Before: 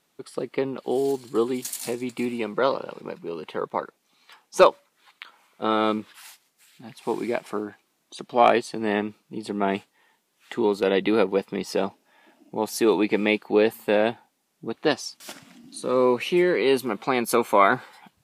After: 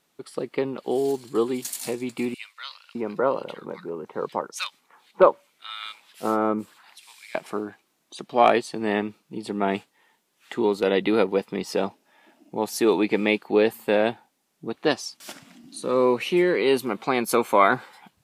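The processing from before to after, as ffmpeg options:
-filter_complex "[0:a]asettb=1/sr,asplit=3[a][b][c];[a]atrim=end=2.344[d];[b]atrim=start=2.34:end=7.35,asetpts=PTS-STARTPTS,afade=t=in:d=0.004:c=qsin,afade=t=out:st=5.006:d=0.004:c=qsin,acrossover=split=1800[e][f];[e]adelay=610[g];[g][f]amix=inputs=2:normalize=0,atrim=end_sample=220941[h];[c]atrim=start=7.346[i];[d][h]acrossfade=d=0.004:c1=hsin:c2=qsin[j];[j][i]acrossfade=d=0.004:c1=qsin:c2=hsin"

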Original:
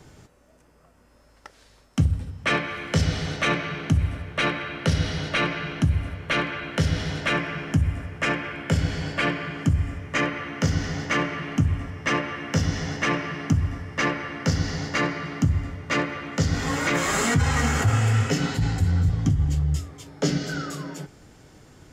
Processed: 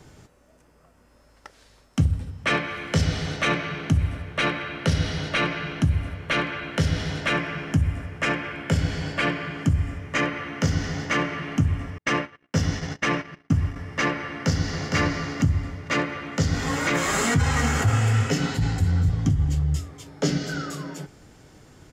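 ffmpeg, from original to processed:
-filter_complex "[0:a]asettb=1/sr,asplit=3[a][b][c];[a]atrim=end=11.984[d];[b]atrim=start=11.98:end=13.76,asetpts=PTS-STARTPTS,afade=t=in:d=0.004:c=qsin,afade=t=out:st=1.776:d=0.004:c=qsin,agate=range=-48dB:threshold=-30dB:ratio=16:release=100:detection=peak[e];[c]atrim=start=13.756[f];[d][e]acrossfade=d=0.004:c1=hsin:c2=qsin[g];[g][f]acrossfade=d=0.004:c1=qsin:c2=hsin,asplit=2[h][i];[i]afade=t=in:st=14.27:d=0.01,afade=t=out:st=14.95:d=0.01,aecho=0:1:460|920|1380:0.630957|0.0946436|0.0141965[j];[h][j]amix=inputs=2:normalize=0"

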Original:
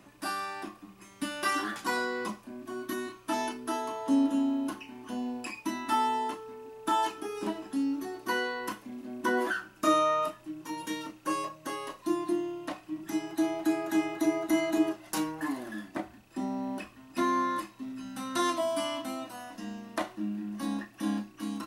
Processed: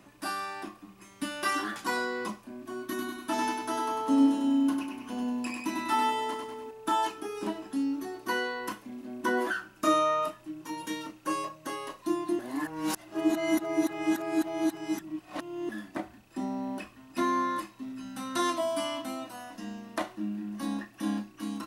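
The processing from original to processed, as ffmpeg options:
-filter_complex "[0:a]asettb=1/sr,asplit=3[a][b][c];[a]atrim=end=2.884[d];[b]atrim=start=2.88:end=6.71,asetpts=PTS-STARTPTS,afade=t=in:d=0.004:c=qsin,afade=t=out:st=3.826:d=0.004:c=qsin,aecho=1:1:98|196|294|392|490|588|686:0.631|0.334|0.177|0.0939|0.0498|0.0264|0.014,atrim=end_sample=168903[e];[c]atrim=start=6.706[f];[d][e]acrossfade=d=0.004:c1=hsin:c2=qsin[g];[g][f]acrossfade=d=0.004:c1=qsin:c2=hsin,asplit=3[h][i][j];[h]atrim=end=12.392[k];[i]atrim=start=12.388:end=15.692,asetpts=PTS-STARTPTS,areverse[l];[j]atrim=start=15.688[m];[k][l]acrossfade=d=0.004:c1=hsin:c2=hsin[n];[n][m]acrossfade=d=0.004:c1=hsin:c2=hsin"

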